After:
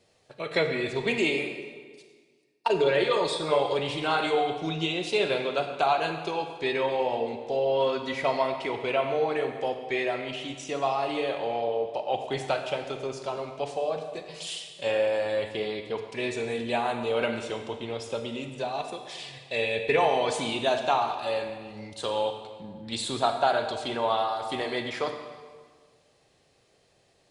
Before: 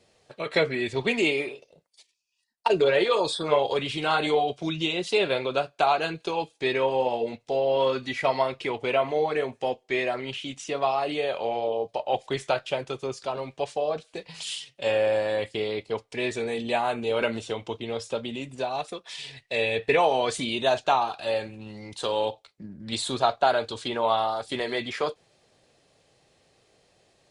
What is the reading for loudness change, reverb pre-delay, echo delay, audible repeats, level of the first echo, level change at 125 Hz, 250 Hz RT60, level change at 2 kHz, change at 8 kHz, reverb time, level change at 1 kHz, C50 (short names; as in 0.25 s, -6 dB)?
-1.5 dB, 33 ms, none, none, none, -1.0 dB, 1.6 s, -1.5 dB, -1.5 dB, 1.6 s, -1.5 dB, 6.5 dB